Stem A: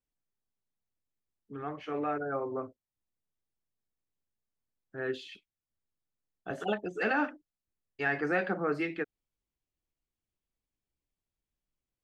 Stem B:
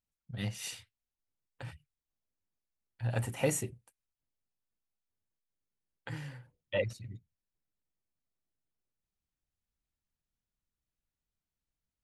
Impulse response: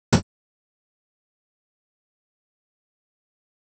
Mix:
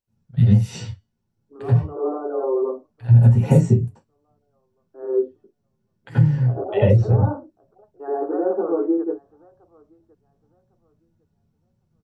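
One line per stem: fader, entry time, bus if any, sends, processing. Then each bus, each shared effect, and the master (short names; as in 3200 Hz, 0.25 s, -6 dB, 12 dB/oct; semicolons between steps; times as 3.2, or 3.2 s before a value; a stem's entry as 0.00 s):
+1.0 dB, 0.00 s, send -16.5 dB, echo send -21.5 dB, elliptic band-pass 310–1100 Hz, stop band 40 dB
+2.0 dB, 0.00 s, send -6.5 dB, no echo send, resonator 140 Hz, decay 0.38 s, harmonics all, mix 30%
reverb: on, pre-delay 76 ms
echo: feedback echo 1.104 s, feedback 23%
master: compressor 3:1, threshold -13 dBFS, peak gain reduction 12.5 dB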